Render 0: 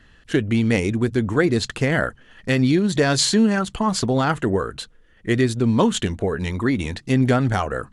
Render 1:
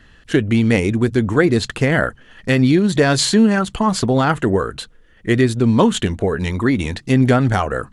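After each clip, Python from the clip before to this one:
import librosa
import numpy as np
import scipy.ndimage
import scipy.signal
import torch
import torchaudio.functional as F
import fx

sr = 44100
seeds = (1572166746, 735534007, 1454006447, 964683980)

y = fx.dynamic_eq(x, sr, hz=5800.0, q=1.1, threshold_db=-37.0, ratio=4.0, max_db=-4)
y = y * librosa.db_to_amplitude(4.0)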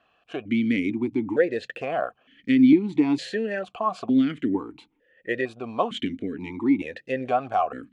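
y = fx.vowel_held(x, sr, hz=2.2)
y = y * librosa.db_to_amplitude(2.5)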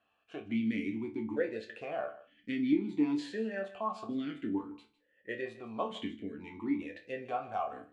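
y = fx.resonator_bank(x, sr, root=38, chord='sus4', decay_s=0.27)
y = y + 10.0 ** (-17.5 / 20.0) * np.pad(y, (int(155 * sr / 1000.0), 0))[:len(y)]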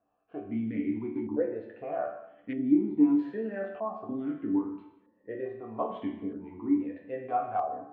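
y = fx.rev_double_slope(x, sr, seeds[0], early_s=0.7, late_s=1.9, knee_db=-18, drr_db=4.5)
y = fx.filter_lfo_lowpass(y, sr, shape='saw_up', hz=0.79, low_hz=730.0, high_hz=1600.0, q=0.96)
y = y * librosa.db_to_amplitude(1.5)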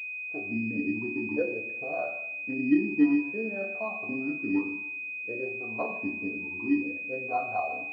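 y = fx.pwm(x, sr, carrier_hz=2500.0)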